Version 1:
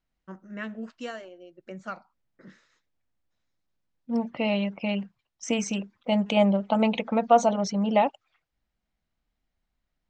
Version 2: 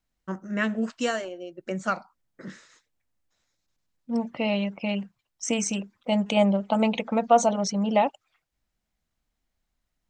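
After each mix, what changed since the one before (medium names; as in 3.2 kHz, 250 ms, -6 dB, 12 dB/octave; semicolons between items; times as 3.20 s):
first voice +9.5 dB; master: remove low-pass 5 kHz 12 dB/octave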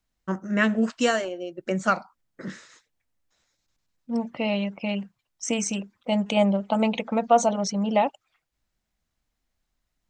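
first voice +4.5 dB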